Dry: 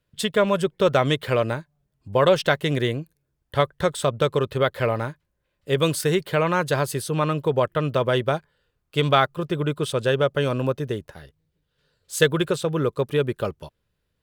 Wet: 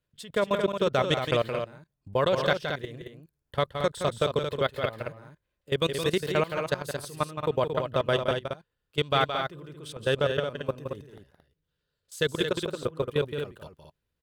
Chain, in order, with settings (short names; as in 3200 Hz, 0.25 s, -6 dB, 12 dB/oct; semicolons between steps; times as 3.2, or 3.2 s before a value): level quantiser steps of 20 dB; dynamic EQ 4700 Hz, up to +5 dB, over -44 dBFS, Q 1.2; loudspeakers at several distances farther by 58 m -8 dB, 77 m -7 dB; gain -3 dB